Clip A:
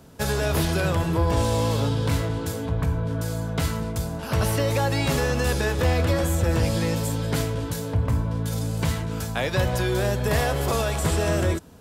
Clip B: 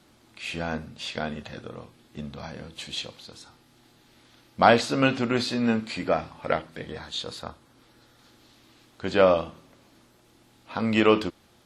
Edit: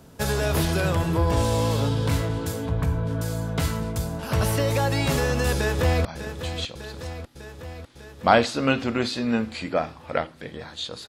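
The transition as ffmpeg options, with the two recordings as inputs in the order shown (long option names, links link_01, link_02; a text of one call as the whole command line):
ffmpeg -i cue0.wav -i cue1.wav -filter_complex "[0:a]apad=whole_dur=11.08,atrim=end=11.08,atrim=end=6.052[link_01];[1:a]atrim=start=2.398:end=7.43[link_02];[link_01][link_02]acrossfade=duration=0.004:curve1=hsin:curve2=hsin,asplit=2[link_03][link_04];[link_04]afade=type=in:start_time=5.55:duration=0.01,afade=type=out:start_time=6.05:duration=0.01,aecho=0:1:600|1200|1800|2400|3000|3600|4200|4800|5400|6000:0.298538|0.208977|0.146284|0.102399|0.071679|0.0501753|0.0351227|0.0245859|0.0172101|0.0120471[link_05];[link_03][link_05]amix=inputs=2:normalize=0" out.wav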